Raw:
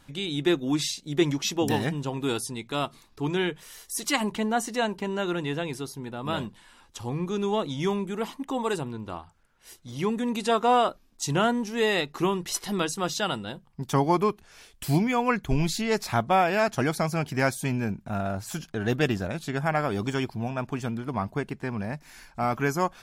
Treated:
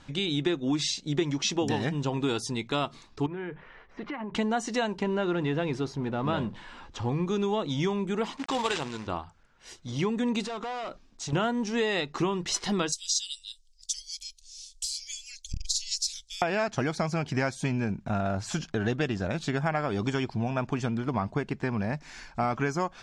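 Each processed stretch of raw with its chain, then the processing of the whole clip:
3.26–4.35 block floating point 5-bit + LPF 2100 Hz 24 dB/oct + compressor 16:1, threshold -35 dBFS
5.03–7.09 G.711 law mismatch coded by mu + LPF 2100 Hz 6 dB/oct
8.37–9.07 tilt +3 dB/oct + careless resampling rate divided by 4×, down none, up hold + companded quantiser 4-bit
10.44–11.33 compressor 8:1, threshold -31 dBFS + hard clip -36 dBFS
12.92–16.42 inverse Chebyshev band-stop 140–1100 Hz, stop band 70 dB + bell 11000 Hz +11 dB 2.4 oct + core saturation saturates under 250 Hz
whole clip: LPF 7200 Hz 24 dB/oct; compressor, threshold -28 dBFS; gain +4 dB

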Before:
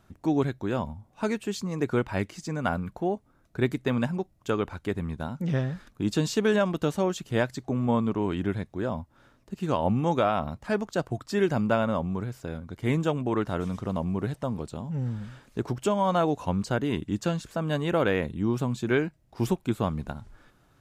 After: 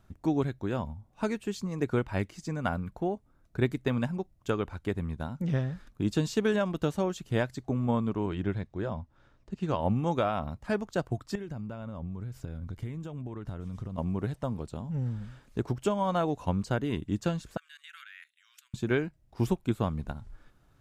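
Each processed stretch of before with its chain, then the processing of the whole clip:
8.26–9.8 LPF 6500 Hz + notch 250 Hz, Q 8
11.35–13.98 low shelf 170 Hz +10.5 dB + compressor 5:1, threshold -33 dBFS + mismatched tape noise reduction encoder only
17.57–18.74 steep high-pass 1500 Hz 48 dB/oct + level quantiser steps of 15 dB
whole clip: low shelf 83 Hz +10.5 dB; transient shaper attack +3 dB, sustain -1 dB; gain -5 dB

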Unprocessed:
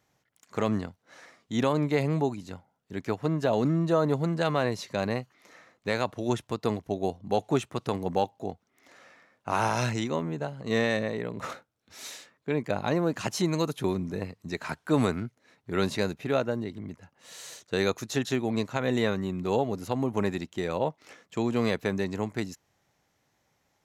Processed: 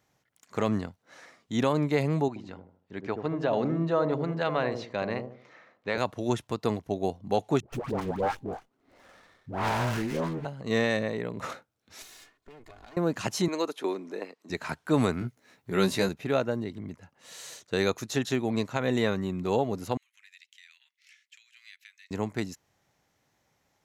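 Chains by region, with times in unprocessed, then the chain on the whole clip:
2.28–5.98 LPF 3500 Hz + low shelf 270 Hz -8 dB + dark delay 78 ms, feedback 35%, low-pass 600 Hz, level -4.5 dB
7.6–10.45 self-modulated delay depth 0.19 ms + dispersion highs, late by 0.133 s, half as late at 780 Hz + running maximum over 9 samples
12.02–12.97 minimum comb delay 2.8 ms + compressor 10:1, threshold -46 dBFS
13.48–14.5 HPF 300 Hz 24 dB/oct + high shelf 8400 Hz -10 dB
15.19–16.09 high shelf 11000 Hz +11 dB + doubler 16 ms -4 dB
19.97–22.11 high shelf 3500 Hz -8.5 dB + compressor 2:1, threshold -40 dBFS + steep high-pass 2000 Hz
whole clip: dry

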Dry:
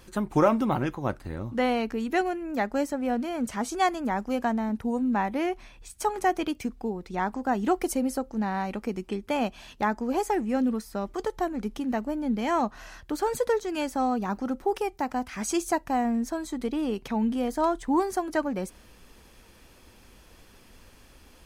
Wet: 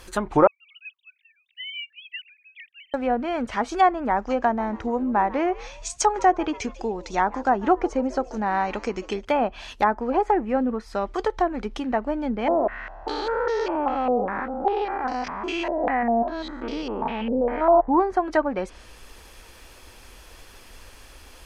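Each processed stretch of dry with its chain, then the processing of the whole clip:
0.47–2.94 sine-wave speech + steep high-pass 2500 Hz 48 dB/oct
4.16–9.25 synth low-pass 6600 Hz, resonance Q 3.4 + frequency-shifting echo 0.143 s, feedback 45%, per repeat +110 Hz, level -21 dB
12.48–17.88 stepped spectrum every 0.2 s + stepped low-pass 5 Hz 540–5400 Hz
whole clip: treble ducked by the level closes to 1300 Hz, closed at -22.5 dBFS; bell 180 Hz -11 dB 1.7 oct; gain +8.5 dB

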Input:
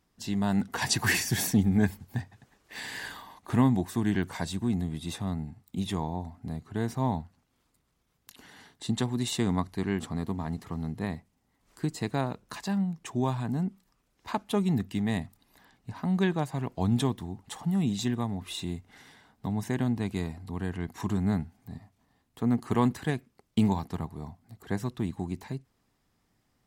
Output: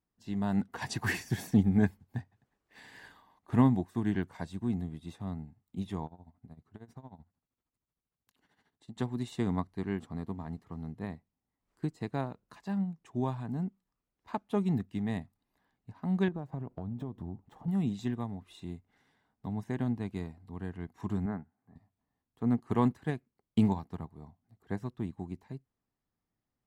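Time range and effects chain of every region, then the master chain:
6.06–8.97 compressor 5:1, threshold -32 dBFS + tremolo 13 Hz, depth 75%
16.28–17.68 switching dead time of 0.056 ms + tilt shelf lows +7.5 dB, about 1300 Hz + compressor 16:1, threshold -27 dBFS
21.26–21.76 HPF 240 Hz 6 dB/oct + resonant high shelf 2400 Hz -14 dB, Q 1.5
whole clip: high shelf 2800 Hz -9 dB; upward expander 1.5:1, over -48 dBFS

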